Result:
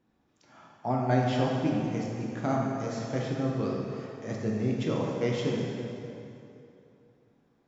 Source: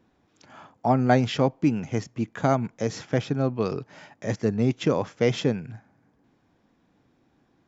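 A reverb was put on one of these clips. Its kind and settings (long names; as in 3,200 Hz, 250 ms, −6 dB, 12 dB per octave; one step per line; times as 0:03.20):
dense smooth reverb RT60 2.9 s, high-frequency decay 0.75×, DRR −2.5 dB
level −9.5 dB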